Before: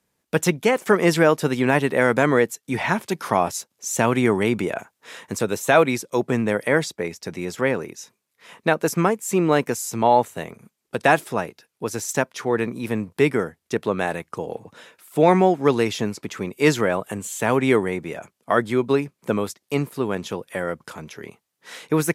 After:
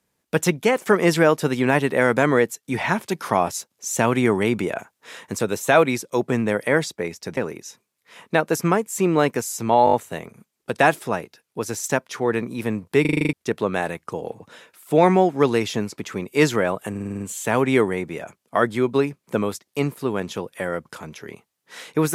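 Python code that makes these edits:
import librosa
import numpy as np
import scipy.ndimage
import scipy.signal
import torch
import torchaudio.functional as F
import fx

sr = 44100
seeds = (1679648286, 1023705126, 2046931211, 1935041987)

y = fx.edit(x, sr, fx.cut(start_s=7.37, length_s=0.33),
    fx.stutter(start_s=10.18, slice_s=0.02, count=5),
    fx.stutter_over(start_s=13.26, slice_s=0.04, count=8),
    fx.stutter(start_s=17.15, slice_s=0.05, count=7), tone=tone)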